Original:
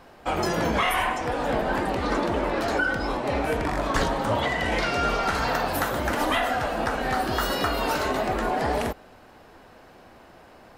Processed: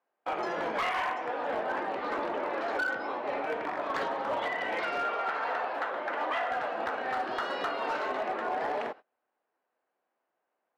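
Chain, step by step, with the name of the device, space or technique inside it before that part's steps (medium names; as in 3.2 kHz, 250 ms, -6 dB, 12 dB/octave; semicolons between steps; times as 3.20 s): walkie-talkie (band-pass 430–2500 Hz; hard clipper -20.5 dBFS, distortion -19 dB; gate -40 dBFS, range -26 dB); 5.03–6.52 s: tone controls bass -11 dB, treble -9 dB; trim -4.5 dB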